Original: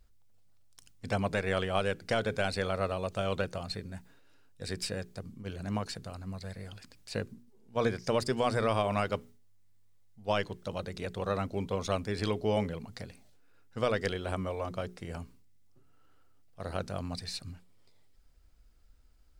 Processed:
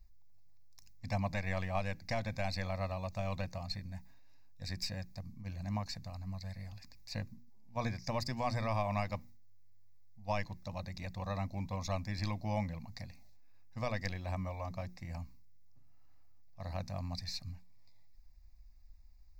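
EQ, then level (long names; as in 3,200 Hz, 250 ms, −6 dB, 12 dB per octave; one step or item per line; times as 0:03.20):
low-shelf EQ 74 Hz +9 dB
high-shelf EQ 6,600 Hz +5.5 dB
phaser with its sweep stopped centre 2,100 Hz, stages 8
−3.0 dB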